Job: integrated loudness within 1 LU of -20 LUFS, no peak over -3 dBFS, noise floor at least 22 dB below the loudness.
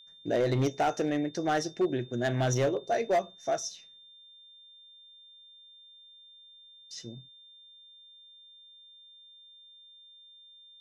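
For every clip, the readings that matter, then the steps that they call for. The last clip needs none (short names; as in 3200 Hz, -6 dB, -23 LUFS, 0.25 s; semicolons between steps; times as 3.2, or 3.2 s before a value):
clipped 0.7%; flat tops at -21.0 dBFS; steady tone 3600 Hz; tone level -52 dBFS; loudness -30.0 LUFS; peak -21.0 dBFS; loudness target -20.0 LUFS
-> clip repair -21 dBFS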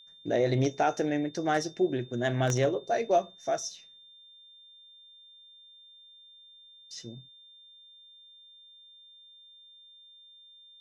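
clipped 0.0%; steady tone 3600 Hz; tone level -52 dBFS
-> notch 3600 Hz, Q 30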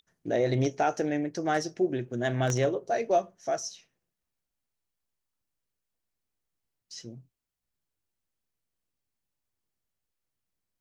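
steady tone none; loudness -29.0 LUFS; peak -12.5 dBFS; loudness target -20.0 LUFS
-> gain +9 dB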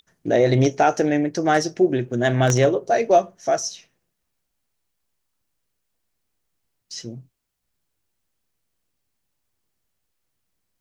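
loudness -20.0 LUFS; peak -3.5 dBFS; noise floor -77 dBFS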